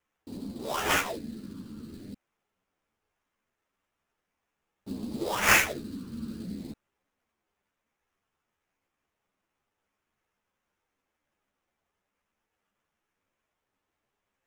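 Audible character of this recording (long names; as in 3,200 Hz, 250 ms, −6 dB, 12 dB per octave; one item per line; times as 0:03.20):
phaser sweep stages 12, 0.45 Hz, lowest notch 680–2,500 Hz
aliases and images of a low sample rate 4,400 Hz, jitter 20%
a shimmering, thickened sound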